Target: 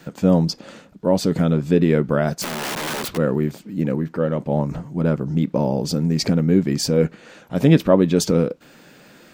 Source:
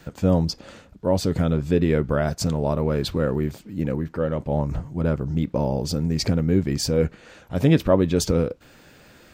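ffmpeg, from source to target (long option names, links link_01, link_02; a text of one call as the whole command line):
ffmpeg -i in.wav -filter_complex "[0:a]asplit=3[link_01][link_02][link_03];[link_01]afade=type=out:start_time=2.41:duration=0.02[link_04];[link_02]aeval=exprs='(mod(15.8*val(0)+1,2)-1)/15.8':channel_layout=same,afade=type=in:start_time=2.41:duration=0.02,afade=type=out:start_time=3.16:duration=0.02[link_05];[link_03]afade=type=in:start_time=3.16:duration=0.02[link_06];[link_04][link_05][link_06]amix=inputs=3:normalize=0,lowshelf=frequency=120:width_type=q:width=1.5:gain=-11,volume=2.5dB" out.wav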